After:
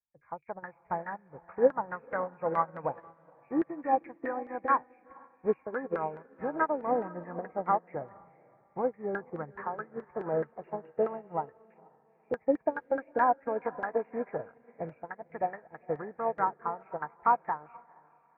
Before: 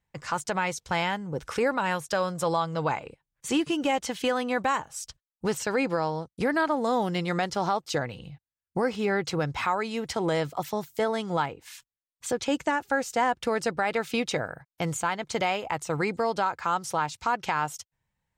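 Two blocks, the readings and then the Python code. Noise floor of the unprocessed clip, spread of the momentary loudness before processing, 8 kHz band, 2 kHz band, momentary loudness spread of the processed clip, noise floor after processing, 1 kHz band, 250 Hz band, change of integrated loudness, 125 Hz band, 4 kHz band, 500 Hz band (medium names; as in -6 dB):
under -85 dBFS, 7 LU, under -40 dB, -10.0 dB, 15 LU, -66 dBFS, -3.0 dB, -7.5 dB, -4.5 dB, -12.5 dB, under -35 dB, -3.5 dB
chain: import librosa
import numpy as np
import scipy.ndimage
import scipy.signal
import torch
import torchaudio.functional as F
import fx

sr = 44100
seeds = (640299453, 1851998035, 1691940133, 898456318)

y = fx.freq_compress(x, sr, knee_hz=1600.0, ratio=4.0)
y = fx.filter_lfo_lowpass(y, sr, shape='saw_down', hz=4.7, low_hz=410.0, high_hz=1600.0, q=2.5)
y = fx.echo_diffused(y, sr, ms=480, feedback_pct=44, wet_db=-9)
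y = fx.upward_expand(y, sr, threshold_db=-33.0, expansion=2.5)
y = y * 10.0 ** (-1.0 / 20.0)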